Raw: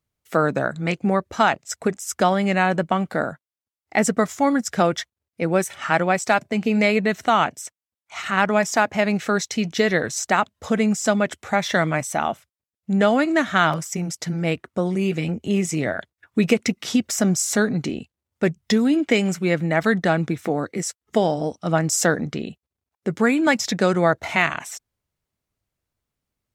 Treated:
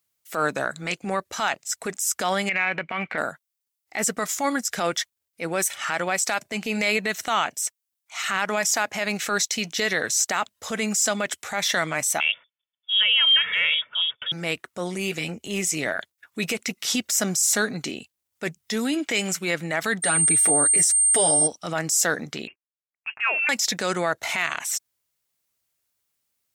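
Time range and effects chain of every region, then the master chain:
0:02.49–0:03.18: low-pass with resonance 2,300 Hz, resonance Q 8.2 + downward compressor 16 to 1, threshold −17 dBFS
0:12.20–0:14.32: comb filter 2.4 ms, depth 56% + voice inversion scrambler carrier 3,500 Hz
0:20.02–0:21.46: comb filter 7 ms, depth 77% + steady tone 8,700 Hz −26 dBFS
0:22.47–0:23.49: mu-law and A-law mismatch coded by A + high-pass filter 510 Hz + voice inversion scrambler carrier 3,000 Hz
whole clip: spectral tilt +3.5 dB per octave; brickwall limiter −10.5 dBFS; transient designer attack −6 dB, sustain −1 dB

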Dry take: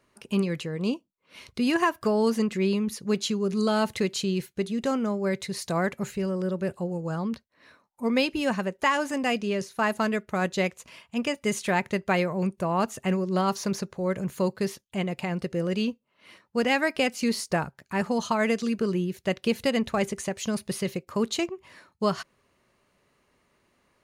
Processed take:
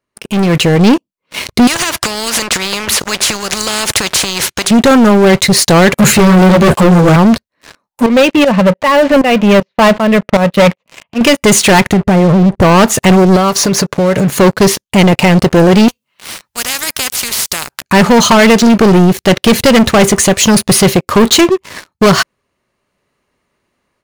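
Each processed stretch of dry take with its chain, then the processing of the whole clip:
0:01.67–0:04.71: low-pass filter 7,900 Hz + downward compressor 10 to 1, threshold −28 dBFS + every bin compressed towards the loudest bin 4 to 1
0:05.98–0:07.16: high-pass filter 71 Hz 24 dB per octave + leveller curve on the samples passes 3 + string-ensemble chorus
0:08.06–0:11.21: loudspeaker in its box 140–3,200 Hz, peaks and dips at 180 Hz +5 dB, 360 Hz −8 dB, 560 Hz +7 dB, 1,500 Hz −7 dB + shaped tremolo saw up 2.6 Hz, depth 90%
0:11.93–0:12.62: high-pass filter 93 Hz 6 dB per octave + spectral tilt −4.5 dB per octave + downward compressor 16 to 1, threshold −26 dBFS
0:13.36–0:14.38: high-pass filter 100 Hz + downward compressor 5 to 1, threshold −34 dBFS + comb filter 6.9 ms, depth 33%
0:15.88–0:17.82: guitar amp tone stack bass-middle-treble 5-5-5 + every bin compressed towards the loudest bin 4 to 1
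whole clip: leveller curve on the samples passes 5; automatic gain control gain up to 11.5 dB

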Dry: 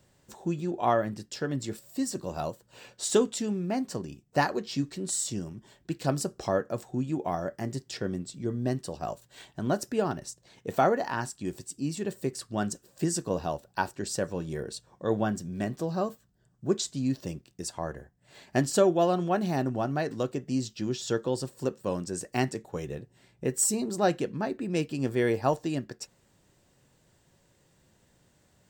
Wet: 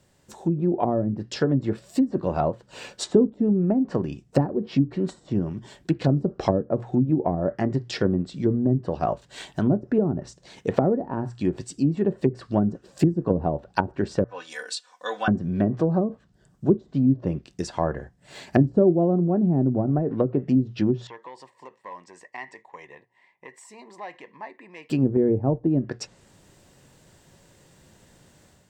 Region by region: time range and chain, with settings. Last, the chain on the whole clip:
0:14.24–0:15.28: high-pass filter 1,300 Hz + comb filter 4 ms, depth 96%
0:19.71–0:20.39: variable-slope delta modulation 64 kbit/s + high-frequency loss of the air 240 metres
0:21.07–0:24.90: downward compressor 3 to 1, threshold −30 dBFS + hard clipping −25.5 dBFS + pair of resonant band-passes 1,400 Hz, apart 0.96 octaves
whole clip: treble cut that deepens with the level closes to 330 Hz, closed at −25 dBFS; mains-hum notches 60/120 Hz; automatic gain control gain up to 8 dB; level +2 dB

